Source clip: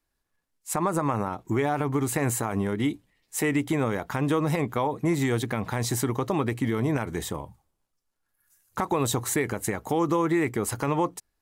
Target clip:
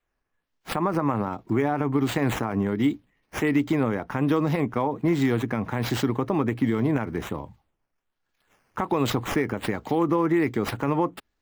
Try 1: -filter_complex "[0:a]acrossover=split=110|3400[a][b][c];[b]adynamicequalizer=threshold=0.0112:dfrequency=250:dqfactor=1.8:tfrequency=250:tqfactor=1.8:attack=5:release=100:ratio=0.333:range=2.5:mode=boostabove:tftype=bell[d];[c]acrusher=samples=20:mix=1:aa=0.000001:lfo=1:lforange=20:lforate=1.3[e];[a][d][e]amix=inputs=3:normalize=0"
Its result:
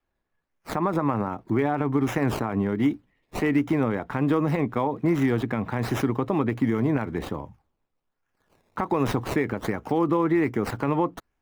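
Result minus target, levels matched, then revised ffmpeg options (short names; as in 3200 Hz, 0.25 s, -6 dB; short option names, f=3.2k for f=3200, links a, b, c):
decimation with a swept rate: distortion +6 dB
-filter_complex "[0:a]acrossover=split=110|3400[a][b][c];[b]adynamicequalizer=threshold=0.0112:dfrequency=250:dqfactor=1.8:tfrequency=250:tqfactor=1.8:attack=5:release=100:ratio=0.333:range=2.5:mode=boostabove:tftype=bell[d];[c]acrusher=samples=8:mix=1:aa=0.000001:lfo=1:lforange=8:lforate=1.3[e];[a][d][e]amix=inputs=3:normalize=0"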